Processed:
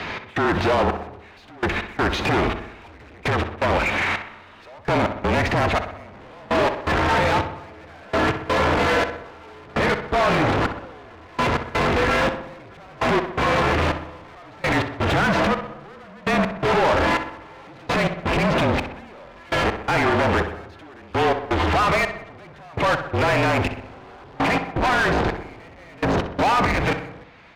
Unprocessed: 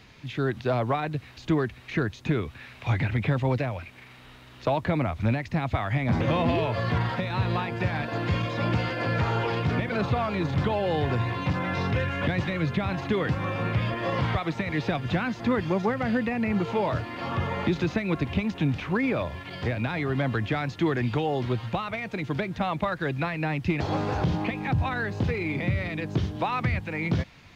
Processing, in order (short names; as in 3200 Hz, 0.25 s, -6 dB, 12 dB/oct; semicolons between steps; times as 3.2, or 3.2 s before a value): high shelf 5200 Hz -9.5 dB; in parallel at +3 dB: compressor, threshold -35 dBFS, peak gain reduction 15.5 dB; on the sum: limiter -21.5 dBFS, peak gain reduction 10 dB; AGC gain up to 7.5 dB; hard clip -27.5 dBFS, distortion -6 dB; frequency shift -33 Hz; overdrive pedal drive 23 dB, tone 1600 Hz, clips at -16 dBFS; step gate "x.xxx...." 83 bpm -24 dB; on a send: darkening echo 63 ms, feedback 59%, low-pass 3200 Hz, level -9 dB; on the sum: gain +5.5 dB